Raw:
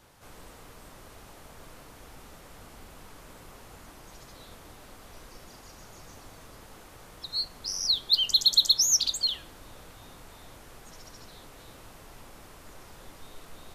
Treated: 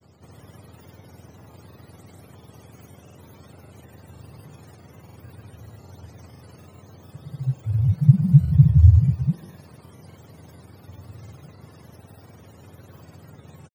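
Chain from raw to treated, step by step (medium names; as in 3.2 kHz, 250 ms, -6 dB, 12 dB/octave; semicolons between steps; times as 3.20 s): spectrum inverted on a logarithmic axis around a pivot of 750 Hz; granulator 94 ms, grains 20 per s, pitch spread up and down by 0 st; trim +4 dB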